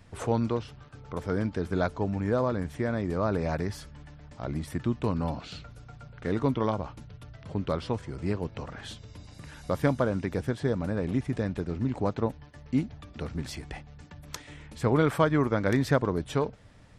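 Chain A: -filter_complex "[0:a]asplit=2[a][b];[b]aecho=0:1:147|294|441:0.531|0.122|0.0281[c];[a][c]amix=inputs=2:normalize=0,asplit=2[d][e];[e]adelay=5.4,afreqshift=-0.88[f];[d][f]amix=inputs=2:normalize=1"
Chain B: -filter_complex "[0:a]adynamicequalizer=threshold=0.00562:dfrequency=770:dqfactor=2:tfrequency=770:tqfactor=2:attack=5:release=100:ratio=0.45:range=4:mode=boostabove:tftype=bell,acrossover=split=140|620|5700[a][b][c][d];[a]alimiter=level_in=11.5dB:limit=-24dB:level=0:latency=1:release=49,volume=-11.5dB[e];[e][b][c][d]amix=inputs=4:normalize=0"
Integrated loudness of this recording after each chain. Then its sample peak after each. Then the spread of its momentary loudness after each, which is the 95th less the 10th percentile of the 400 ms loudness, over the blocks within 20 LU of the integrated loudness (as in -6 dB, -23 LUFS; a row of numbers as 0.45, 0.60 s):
-31.5, -28.5 LUFS; -9.5, -6.0 dBFS; 18, 20 LU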